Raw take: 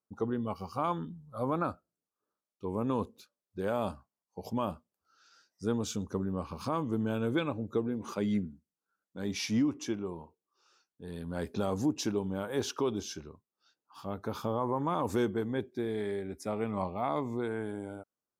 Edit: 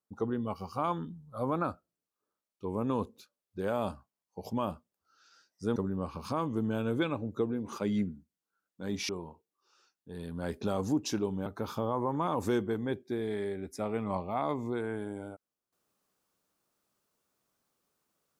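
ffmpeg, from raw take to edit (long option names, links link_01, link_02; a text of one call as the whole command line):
ffmpeg -i in.wav -filter_complex "[0:a]asplit=4[link_01][link_02][link_03][link_04];[link_01]atrim=end=5.762[link_05];[link_02]atrim=start=6.118:end=9.452[link_06];[link_03]atrim=start=10.018:end=12.392[link_07];[link_04]atrim=start=14.128[link_08];[link_05][link_06]acrossfade=duration=0.004:curve1=hsin:curve2=hsin[link_09];[link_09][link_07]acrossfade=duration=0.004:curve1=hsin:curve2=hsin[link_10];[link_10][link_08]acrossfade=duration=0.004:curve1=hsin:curve2=hsin" out.wav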